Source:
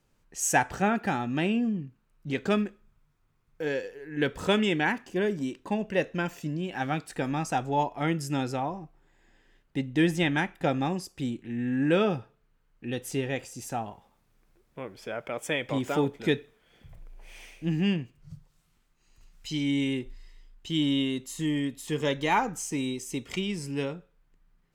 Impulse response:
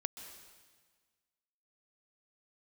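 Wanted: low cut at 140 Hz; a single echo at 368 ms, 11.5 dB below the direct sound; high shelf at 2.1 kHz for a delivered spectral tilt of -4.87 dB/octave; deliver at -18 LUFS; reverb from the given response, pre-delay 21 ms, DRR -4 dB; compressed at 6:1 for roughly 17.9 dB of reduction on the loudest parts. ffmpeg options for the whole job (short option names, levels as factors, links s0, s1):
-filter_complex "[0:a]highpass=140,highshelf=f=2100:g=-5,acompressor=threshold=0.01:ratio=6,aecho=1:1:368:0.266,asplit=2[s0][s1];[1:a]atrim=start_sample=2205,adelay=21[s2];[s1][s2]afir=irnorm=-1:irlink=0,volume=1.68[s3];[s0][s3]amix=inputs=2:normalize=0,volume=10.6"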